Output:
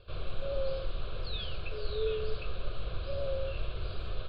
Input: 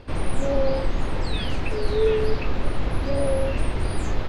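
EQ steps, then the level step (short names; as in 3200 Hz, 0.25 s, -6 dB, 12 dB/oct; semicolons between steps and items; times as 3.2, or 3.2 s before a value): ladder low-pass 4800 Hz, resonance 60%; air absorption 54 m; fixed phaser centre 1300 Hz, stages 8; 0.0 dB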